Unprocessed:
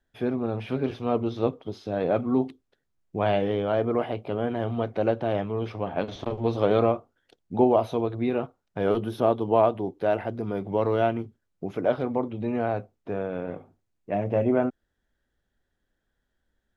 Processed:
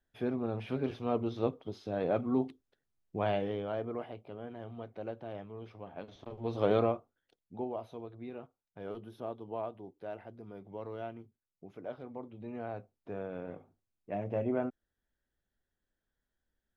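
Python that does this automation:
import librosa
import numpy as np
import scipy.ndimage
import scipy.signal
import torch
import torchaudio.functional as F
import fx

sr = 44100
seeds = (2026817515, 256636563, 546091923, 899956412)

y = fx.gain(x, sr, db=fx.line((3.16, -6.5), (4.35, -16.5), (6.24, -16.5), (6.69, -5.0), (7.65, -18.0), (12.02, -18.0), (13.23, -9.5)))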